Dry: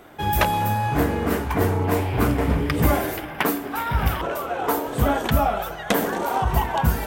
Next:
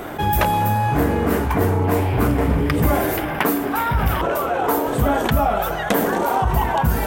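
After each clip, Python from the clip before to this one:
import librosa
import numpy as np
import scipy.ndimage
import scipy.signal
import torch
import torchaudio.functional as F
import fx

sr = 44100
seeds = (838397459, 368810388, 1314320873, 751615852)

y = fx.peak_eq(x, sr, hz=4300.0, db=-4.0, octaves=2.3)
y = fx.env_flatten(y, sr, amount_pct=50)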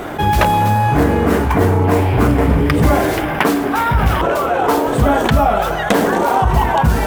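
y = scipy.signal.medfilt(x, 3)
y = y * 10.0 ** (5.0 / 20.0)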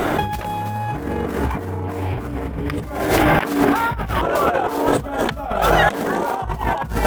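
y = fx.over_compress(x, sr, threshold_db=-19.0, ratio=-0.5)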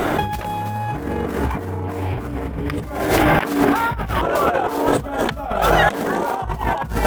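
y = x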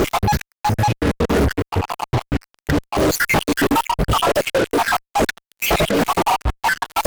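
y = fx.spec_dropout(x, sr, seeds[0], share_pct=74)
y = fx.fuzz(y, sr, gain_db=32.0, gate_db=-36.0)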